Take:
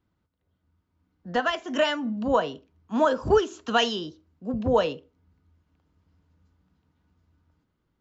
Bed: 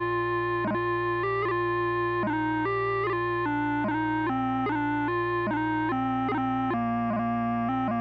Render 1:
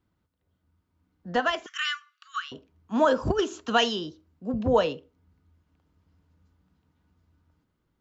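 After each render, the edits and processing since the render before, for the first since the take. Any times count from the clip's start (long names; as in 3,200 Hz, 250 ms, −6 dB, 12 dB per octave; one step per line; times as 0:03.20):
0:01.66–0:02.52: linear-phase brick-wall high-pass 1,100 Hz
0:03.08–0:03.60: compressor whose output falls as the input rises −21 dBFS, ratio −0.5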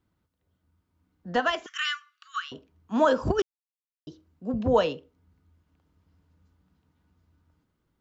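0:03.42–0:04.07: silence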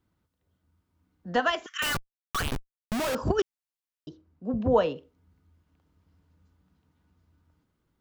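0:01.82–0:03.15: comparator with hysteresis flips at −36.5 dBFS
0:04.09–0:04.96: high-shelf EQ 3,000 Hz −11 dB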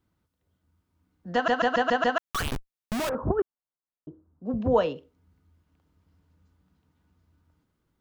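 0:01.34: stutter in place 0.14 s, 6 plays
0:03.09–0:04.46: low-pass filter 1,400 Hz 24 dB per octave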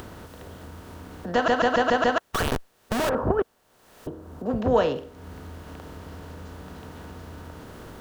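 compressor on every frequency bin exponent 0.6
upward compression, threshold −31 dBFS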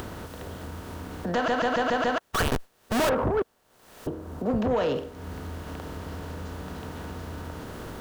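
brickwall limiter −18.5 dBFS, peak gain reduction 10 dB
leveller curve on the samples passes 1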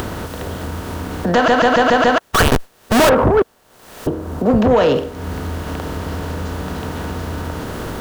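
level +12 dB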